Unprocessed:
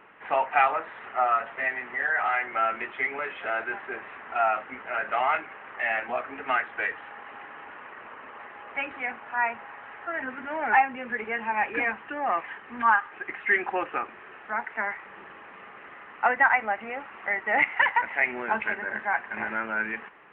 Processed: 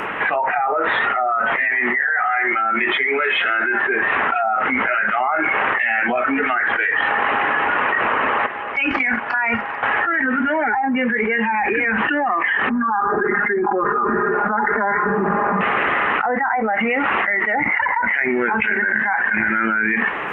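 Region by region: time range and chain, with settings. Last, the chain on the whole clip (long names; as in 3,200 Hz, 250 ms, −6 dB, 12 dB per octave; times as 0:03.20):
0:08.46–0:09.83: noise gate −40 dBFS, range −20 dB + compressor whose output falls as the input rises −39 dBFS
0:12.69–0:15.61: low-pass filter 1,400 Hz 24 dB per octave + comb filter 4.9 ms, depth 94% + level that may fall only so fast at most 42 dB per second
whole clip: treble cut that deepens with the level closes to 920 Hz, closed at −19 dBFS; noise reduction from a noise print of the clip's start 12 dB; envelope flattener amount 100%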